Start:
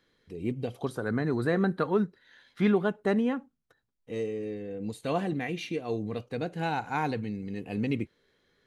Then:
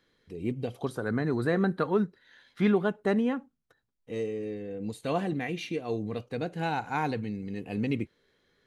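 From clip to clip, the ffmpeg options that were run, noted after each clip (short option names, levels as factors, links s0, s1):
-af anull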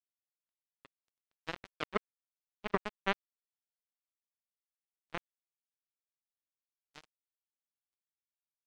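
-filter_complex "[0:a]aeval=exprs='sgn(val(0))*max(abs(val(0))-0.00266,0)':c=same,acrossover=split=210 2300:gain=0.178 1 0.158[s0][s1][s2];[s0][s1][s2]amix=inputs=3:normalize=0,acrusher=bits=2:mix=0:aa=0.5,volume=1.5"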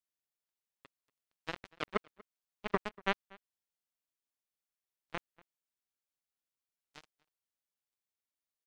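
-filter_complex "[0:a]asplit=2[s0][s1];[s1]adelay=239.1,volume=0.0631,highshelf=f=4000:g=-5.38[s2];[s0][s2]amix=inputs=2:normalize=0"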